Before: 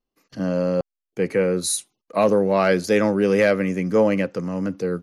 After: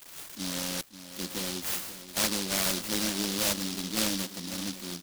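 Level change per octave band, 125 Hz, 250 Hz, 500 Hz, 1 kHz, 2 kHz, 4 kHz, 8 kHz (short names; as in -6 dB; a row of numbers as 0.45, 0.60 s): -13.5, -12.0, -20.5, -12.0, -9.0, +5.0, +0.5 dB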